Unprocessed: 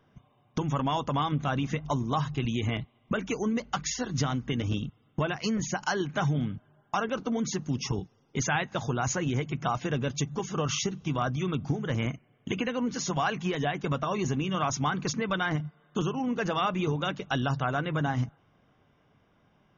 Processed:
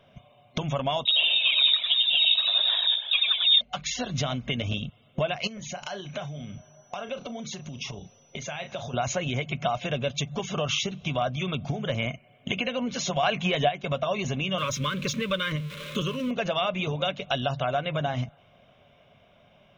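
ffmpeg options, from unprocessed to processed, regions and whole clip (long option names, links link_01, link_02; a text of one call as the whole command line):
ffmpeg -i in.wav -filter_complex "[0:a]asettb=1/sr,asplit=3[link_01][link_02][link_03];[link_01]atrim=end=1.054[link_04];[link_02]atrim=start=1.05:end=3.61,asetpts=PTS-STARTPTS,afade=type=in:duration=0.004:curve=qsin,afade=type=out:start_time=2.556:duration=0.004:curve=qsin,asplit=9[link_05][link_06][link_07][link_08][link_09][link_10][link_11][link_12][link_13];[link_06]adelay=99,afreqshift=59,volume=-4.5dB[link_14];[link_07]adelay=198,afreqshift=118,volume=-9.2dB[link_15];[link_08]adelay=297,afreqshift=177,volume=-14dB[link_16];[link_09]adelay=396,afreqshift=236,volume=-18.7dB[link_17];[link_10]adelay=495,afreqshift=295,volume=-23.4dB[link_18];[link_11]adelay=594,afreqshift=354,volume=-28.2dB[link_19];[link_12]adelay=693,afreqshift=413,volume=-32.9dB[link_20];[link_13]adelay=792,afreqshift=472,volume=-37.6dB[link_21];[link_05][link_14][link_15][link_16][link_17][link_18][link_19][link_20][link_21]amix=inputs=9:normalize=0,atrim=end_sample=112896,aphaser=in_gain=1:out_gain=1:delay=4:decay=0.66:speed=1.6:type=sinusoidal,lowpass=frequency=3300:width_type=q:width=0.5098,lowpass=frequency=3300:width_type=q:width=0.6013,lowpass=frequency=3300:width_type=q:width=0.9,lowpass=frequency=3300:width_type=q:width=2.563,afreqshift=-3900[link_22];[link_03]atrim=start=3.606[link_23];[link_04][link_22]acrossfade=duration=0.004:curve1=hsin:curve2=qsin[link_24];[link_24][link_23]acrossfade=duration=0.004:curve1=qsin:curve2=hsin,asettb=1/sr,asplit=3[link_25][link_26][link_27];[link_25]atrim=end=5.474[link_28];[link_26]atrim=start=5.47:end=8.94,asetpts=PTS-STARTPTS,afade=type=in:duration=0.004:curve=qsin,afade=type=out:start_time=3.466:duration=0.004:curve=qsin,asplit=2[link_29][link_30];[link_30]adelay=34,volume=-12dB[link_31];[link_29][link_31]amix=inputs=2:normalize=0,atrim=end_sample=153027,acompressor=threshold=-38dB:ratio=10:attack=3.2:release=140:knee=1:detection=peak,aeval=exprs='val(0)+0.000631*sin(2*PI*5900*n/s)':channel_layout=same[link_32];[link_27]atrim=start=8.936[link_33];[link_28][link_32]acrossfade=duration=0.004:curve1=hsin:curve2=qsin[link_34];[link_34][link_33]acrossfade=duration=0.004:curve1=qsin:curve2=hsin,asettb=1/sr,asplit=3[link_35][link_36][link_37];[link_35]atrim=end=13.234[link_38];[link_36]atrim=start=13.23:end=13.69,asetpts=PTS-STARTPTS,afade=type=in:duration=0.004:curve=qsin,afade=type=out:start_time=0.456:duration=0.004:curve=qsin,equalizer=frequency=5000:width_type=o:width=0.6:gain=-4.5,acontrast=68[link_39];[link_37]atrim=start=13.686[link_40];[link_38][link_39]acrossfade=duration=0.004:curve1=hsin:curve2=qsin[link_41];[link_41][link_40]acrossfade=duration=0.004:curve1=qsin:curve2=hsin,asettb=1/sr,asplit=3[link_42][link_43][link_44];[link_42]atrim=end=14.584[link_45];[link_43]atrim=start=14.58:end=16.31,asetpts=PTS-STARTPTS,afade=type=in:duration=0.004:curve=qsin,afade=type=out:start_time=1.726:duration=0.004:curve=qsin,aeval=exprs='val(0)+0.5*0.0106*sgn(val(0))':channel_layout=same,asuperstop=centerf=760:order=12:qfactor=2[link_46];[link_44]atrim=start=16.306[link_47];[link_45][link_46]acrossfade=duration=0.004:curve1=hsin:curve2=qsin[link_48];[link_48][link_47]acrossfade=duration=0.004:curve1=qsin:curve2=hsin,superequalizer=6b=0.501:8b=3.16:12b=2.82:13b=2.82,acompressor=threshold=-33dB:ratio=2,volume=4dB" out.wav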